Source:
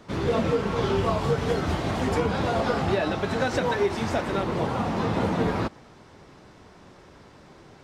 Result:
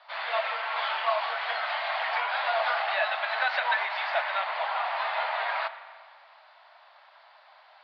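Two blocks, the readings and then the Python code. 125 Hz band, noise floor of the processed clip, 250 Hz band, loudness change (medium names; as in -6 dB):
under -40 dB, -56 dBFS, under -40 dB, -2.5 dB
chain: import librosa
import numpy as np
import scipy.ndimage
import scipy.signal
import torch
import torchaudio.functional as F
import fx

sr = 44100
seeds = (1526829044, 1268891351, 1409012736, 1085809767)

y = fx.dynamic_eq(x, sr, hz=2100.0, q=1.1, threshold_db=-45.0, ratio=4.0, max_db=7)
y = scipy.signal.sosfilt(scipy.signal.cheby1(5, 1.0, [630.0, 4600.0], 'bandpass', fs=sr, output='sos'), y)
y = fx.rev_spring(y, sr, rt60_s=1.9, pass_ms=(38, 50), chirp_ms=25, drr_db=12.5)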